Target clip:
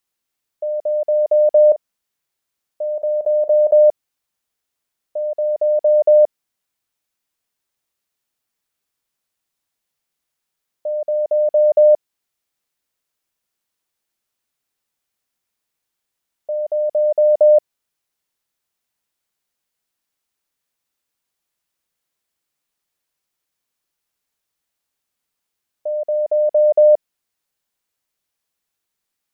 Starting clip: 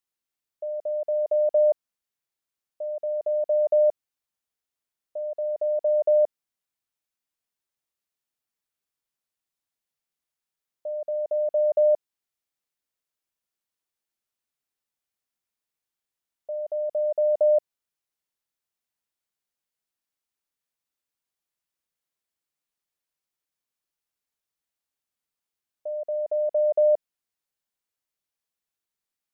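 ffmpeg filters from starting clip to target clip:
ffmpeg -i in.wav -filter_complex "[0:a]asettb=1/sr,asplit=3[link_01][link_02][link_03];[link_01]atrim=end=1.684[link_04];[link_02]atrim=start=1.68:end=3.72,asetpts=PTS-STARTPTS,afade=type=in:duration=0.004:curve=qsin,afade=type=out:start_time=2.036:duration=0.004:curve=qsin,asplit=2[link_05][link_06];[link_06]adelay=41,volume=-13dB[link_07];[link_05][link_07]amix=inputs=2:normalize=0,atrim=end_sample=89964[link_08];[link_03]atrim=start=3.716[link_09];[link_04][link_08]acrossfade=duration=0.004:curve1=hsin:curve2=qsin[link_10];[link_10][link_09]acrossfade=duration=0.004:curve1=qsin:curve2=hsin,volume=8.5dB" out.wav

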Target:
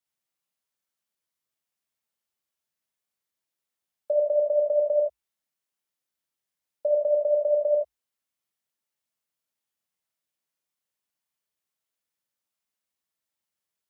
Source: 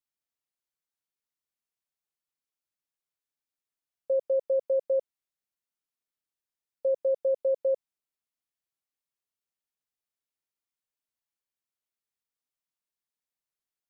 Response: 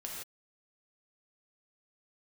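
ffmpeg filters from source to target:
-filter_complex "[0:a]afreqshift=57[link_01];[1:a]atrim=start_sample=2205,atrim=end_sample=4410[link_02];[link_01][link_02]afir=irnorm=-1:irlink=0,volume=7dB"

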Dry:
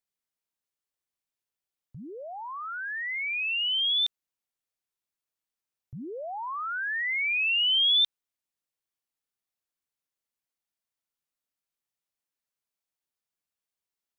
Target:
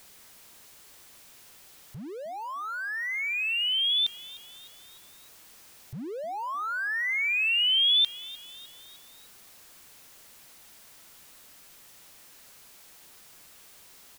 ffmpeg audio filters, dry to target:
ffmpeg -i in.wav -filter_complex "[0:a]aeval=exprs='val(0)+0.5*0.00562*sgn(val(0))':channel_layout=same,asplit=5[link_01][link_02][link_03][link_04][link_05];[link_02]adelay=304,afreqshift=68,volume=-20dB[link_06];[link_03]adelay=608,afreqshift=136,volume=-25.7dB[link_07];[link_04]adelay=912,afreqshift=204,volume=-31.4dB[link_08];[link_05]adelay=1216,afreqshift=272,volume=-37dB[link_09];[link_01][link_06][link_07][link_08][link_09]amix=inputs=5:normalize=0" out.wav

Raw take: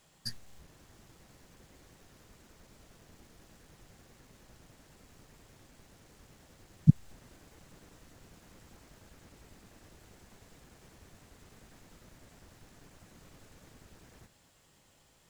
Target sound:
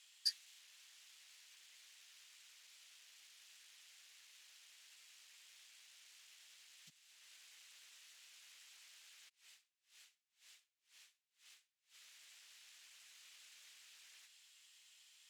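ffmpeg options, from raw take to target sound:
ffmpeg -i in.wav -filter_complex "[0:a]alimiter=limit=-16.5dB:level=0:latency=1:release=437,bandpass=frequency=2800:width_type=q:width=1.5:csg=0,aderivative,asplit=3[link_01][link_02][link_03];[link_01]afade=type=out:start_time=9.28:duration=0.02[link_04];[link_02]aeval=exprs='val(0)*pow(10,-34*(0.5-0.5*cos(2*PI*2*n/s))/20)':channel_layout=same,afade=type=in:start_time=9.28:duration=0.02,afade=type=out:start_time=11.94:duration=0.02[link_05];[link_03]afade=type=in:start_time=11.94:duration=0.02[link_06];[link_04][link_05][link_06]amix=inputs=3:normalize=0,volume=13dB" out.wav

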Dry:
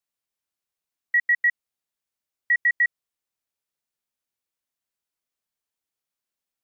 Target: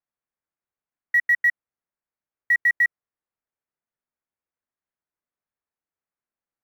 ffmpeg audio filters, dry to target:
ffmpeg -i in.wav -filter_complex "[0:a]asplit=2[link_01][link_02];[link_02]acrusher=bits=3:mix=0:aa=0.000001,volume=-5.5dB[link_03];[link_01][link_03]amix=inputs=2:normalize=0,lowpass=frequency=2000:width=0.5412,lowpass=frequency=2000:width=1.3066,acrusher=bits=8:mode=log:mix=0:aa=0.000001" out.wav

